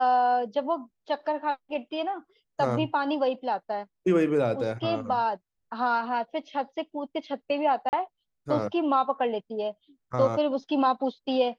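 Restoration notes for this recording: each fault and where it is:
7.89–7.93 s: dropout 39 ms

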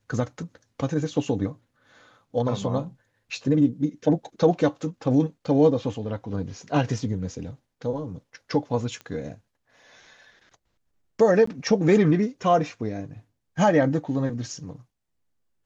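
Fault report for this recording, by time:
9.01 s: pop -25 dBFS
11.46–11.47 s: dropout 14 ms

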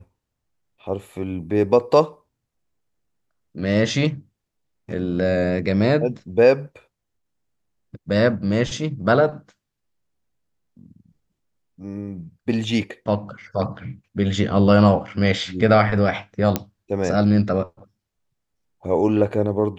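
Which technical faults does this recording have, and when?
16.56 s: pop -5 dBFS

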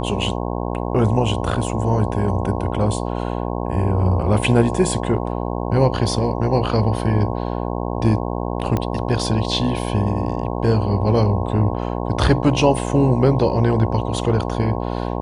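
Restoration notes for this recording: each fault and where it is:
buzz 60 Hz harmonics 18 -24 dBFS
8.77 s: pop -9 dBFS

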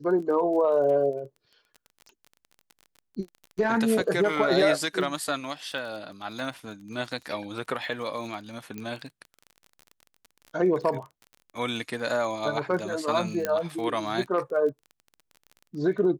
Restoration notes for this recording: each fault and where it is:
crackle 29 per s -36 dBFS
8.78 s: pop -22 dBFS
13.45 s: pop -12 dBFS

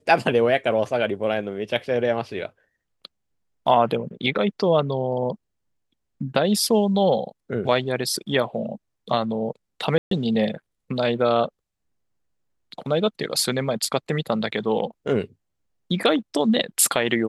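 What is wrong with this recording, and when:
9.98–10.11 s: dropout 133 ms

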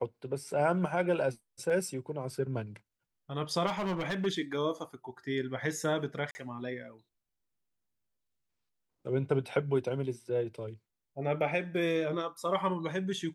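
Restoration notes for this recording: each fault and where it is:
3.66–4.27 s: clipped -29 dBFS
6.31–6.35 s: dropout 40 ms

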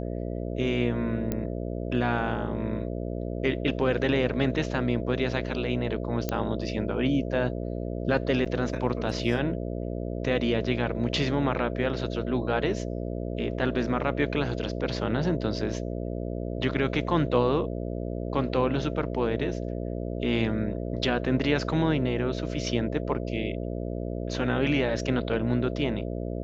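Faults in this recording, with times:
buzz 60 Hz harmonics 11 -32 dBFS
1.32 s: pop -15 dBFS
6.29 s: pop -13 dBFS
8.45–8.46 s: dropout 7.4 ms

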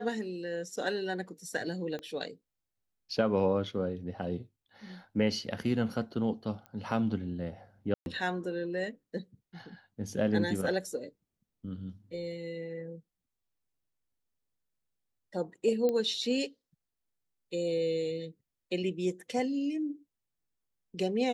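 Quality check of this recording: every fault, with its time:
1.99 s: pop -28 dBFS
6.66 s: pop -31 dBFS
7.94–8.06 s: dropout 121 ms
15.89 s: pop -19 dBFS

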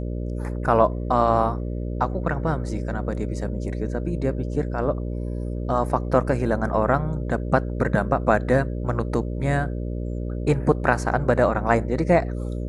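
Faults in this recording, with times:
buzz 60 Hz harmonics 10 -28 dBFS

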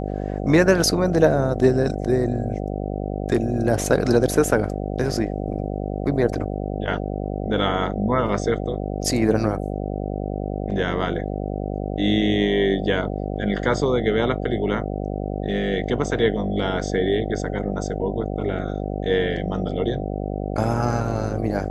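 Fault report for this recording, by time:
buzz 50 Hz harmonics 15 -27 dBFS

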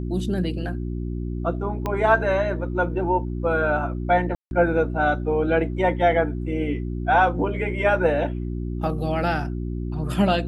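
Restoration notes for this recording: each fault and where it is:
hum 60 Hz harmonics 6 -28 dBFS
1.86 s: pop -13 dBFS
4.35–4.51 s: dropout 161 ms

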